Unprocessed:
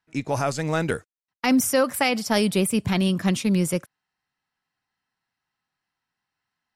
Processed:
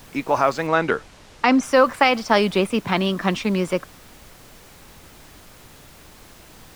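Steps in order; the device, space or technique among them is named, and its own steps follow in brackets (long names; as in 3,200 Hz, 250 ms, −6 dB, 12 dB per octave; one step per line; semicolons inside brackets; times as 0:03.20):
horn gramophone (band-pass filter 260–3,900 Hz; parametric band 1,100 Hz +6.5 dB 0.77 octaves; tape wow and flutter; pink noise bed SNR 23 dB)
0:00.67–0:01.63: low-pass filter 7,500 Hz 12 dB per octave
level +4.5 dB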